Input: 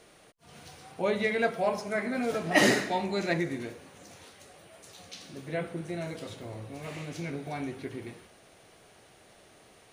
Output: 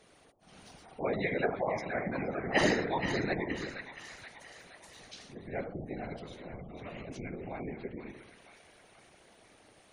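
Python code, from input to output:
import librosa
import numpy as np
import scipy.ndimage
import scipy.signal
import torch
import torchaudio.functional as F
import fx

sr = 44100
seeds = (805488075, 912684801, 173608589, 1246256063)

y = fx.echo_split(x, sr, split_hz=920.0, low_ms=80, high_ms=472, feedback_pct=52, wet_db=-7.5)
y = fx.spec_gate(y, sr, threshold_db=-25, keep='strong')
y = fx.whisperise(y, sr, seeds[0])
y = y * 10.0 ** (-4.5 / 20.0)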